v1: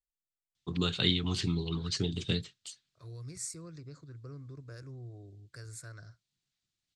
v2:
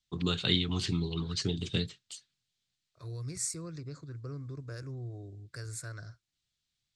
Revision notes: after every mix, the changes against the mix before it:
first voice: entry −0.55 s
second voice +5.0 dB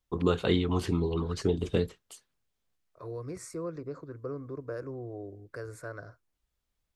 first voice: remove band-pass filter 120–4,900 Hz
master: add graphic EQ with 10 bands 125 Hz −6 dB, 250 Hz +4 dB, 500 Hz +11 dB, 1,000 Hz +8 dB, 4,000 Hz −9 dB, 8,000 Hz −12 dB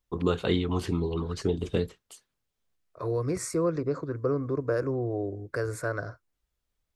second voice +10.0 dB

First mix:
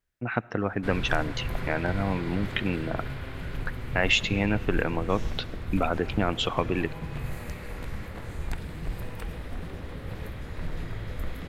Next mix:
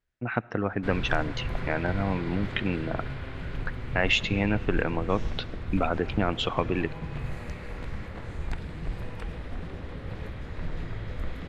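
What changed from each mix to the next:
master: add high-frequency loss of the air 70 metres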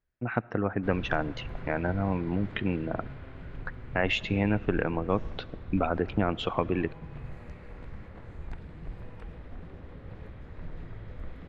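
background −7.0 dB
master: add high-shelf EQ 2,800 Hz −10.5 dB

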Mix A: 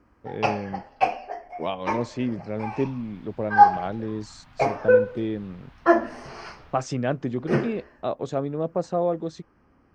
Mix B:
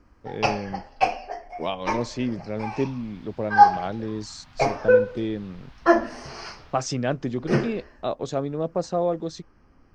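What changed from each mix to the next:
first sound: remove high-pass filter 100 Hz 6 dB per octave
master: add parametric band 5,300 Hz +8 dB 1.3 octaves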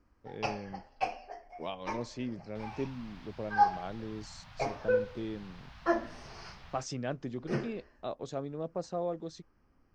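speech −10.5 dB
first sound −11.5 dB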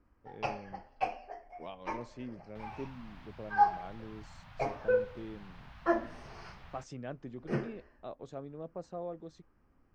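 speech −6.0 dB
master: add parametric band 5,300 Hz −8 dB 1.3 octaves

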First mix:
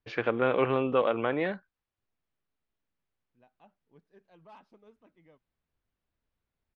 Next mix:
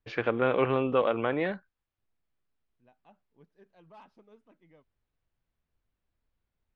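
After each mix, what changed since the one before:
second voice: entry −0.55 s
master: add low-shelf EQ 73 Hz +6.5 dB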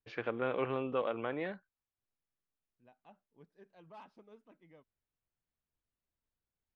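first voice −8.5 dB
master: add low-shelf EQ 73 Hz −6.5 dB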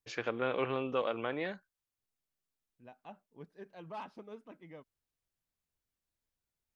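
first voice: remove high-frequency loss of the air 290 metres
second voice +9.5 dB

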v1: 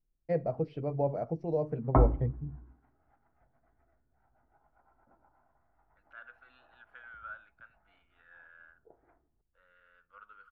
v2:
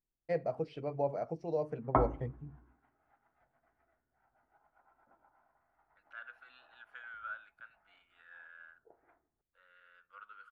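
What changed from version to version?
master: add spectral tilt +3 dB per octave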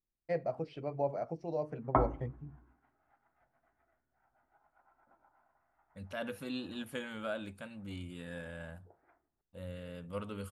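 second voice: remove four-pole ladder band-pass 1,500 Hz, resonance 80%
master: add notch filter 460 Hz, Q 13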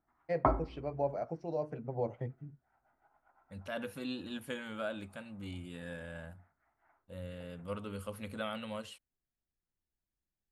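second voice: entry −2.45 s
background: entry −1.50 s

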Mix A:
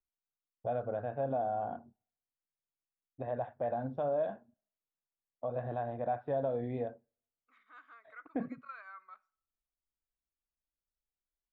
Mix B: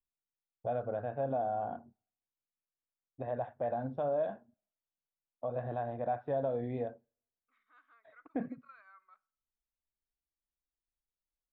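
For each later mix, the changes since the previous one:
second voice −9.0 dB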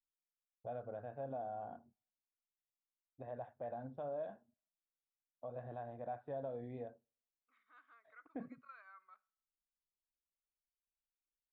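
first voice −10.0 dB

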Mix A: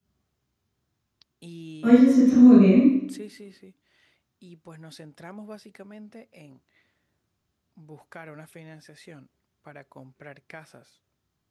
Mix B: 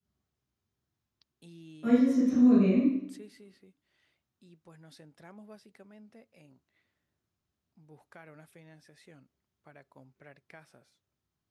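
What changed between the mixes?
first voice −9.5 dB
second voice −8.0 dB

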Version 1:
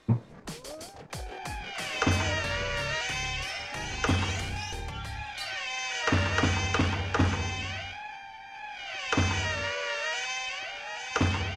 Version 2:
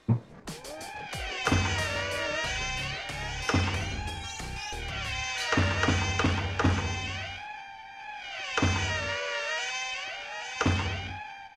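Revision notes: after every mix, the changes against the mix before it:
second sound: entry −0.55 s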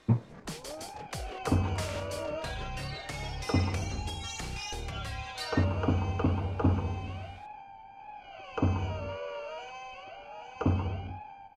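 second sound: add moving average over 24 samples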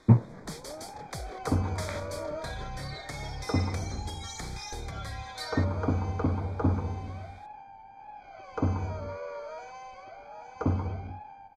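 speech +7.0 dB
master: add Butterworth band-reject 2,800 Hz, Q 2.9

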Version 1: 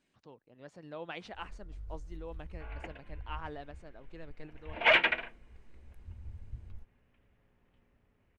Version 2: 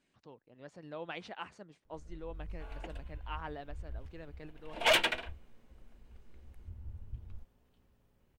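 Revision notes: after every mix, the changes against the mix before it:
first sound: entry +0.60 s
second sound: remove low-pass with resonance 2,200 Hz, resonance Q 2.1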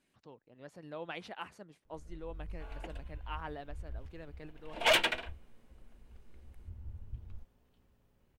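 speech: remove low-pass filter 8,300 Hz 24 dB per octave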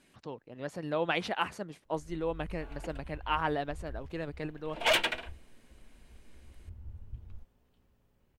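speech +12.0 dB

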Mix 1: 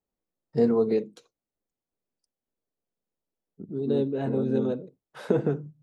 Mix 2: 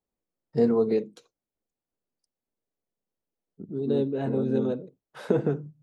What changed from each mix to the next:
nothing changed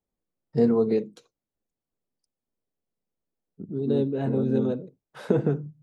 master: add bass and treble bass +4 dB, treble 0 dB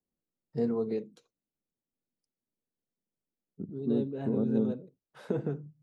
first voice −9.0 dB

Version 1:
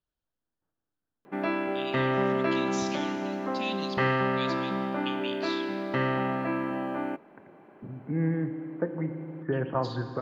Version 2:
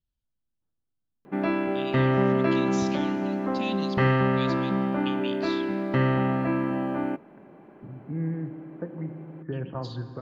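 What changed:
first voice: send −6.0 dB
second voice −9.0 dB
master: add low-shelf EQ 250 Hz +11 dB

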